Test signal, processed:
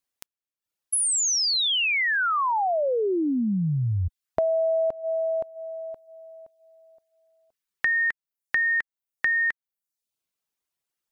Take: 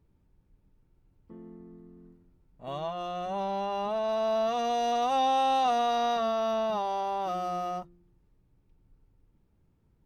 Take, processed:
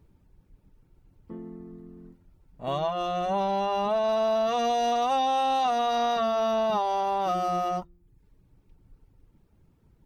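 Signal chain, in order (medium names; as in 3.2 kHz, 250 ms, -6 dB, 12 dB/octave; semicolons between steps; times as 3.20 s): reverb removal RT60 0.6 s; compression, threshold -30 dBFS; trim +8 dB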